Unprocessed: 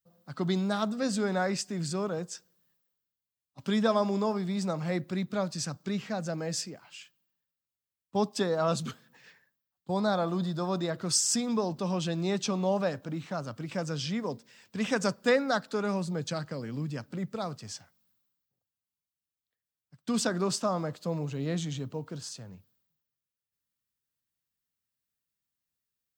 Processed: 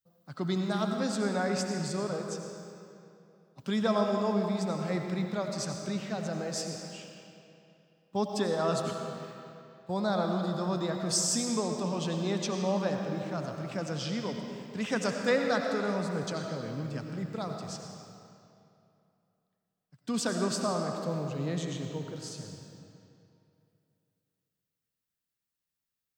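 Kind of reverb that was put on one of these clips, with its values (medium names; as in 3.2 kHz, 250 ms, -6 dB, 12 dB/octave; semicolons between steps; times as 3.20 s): algorithmic reverb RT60 2.7 s, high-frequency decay 0.8×, pre-delay 50 ms, DRR 3 dB; trim -2.5 dB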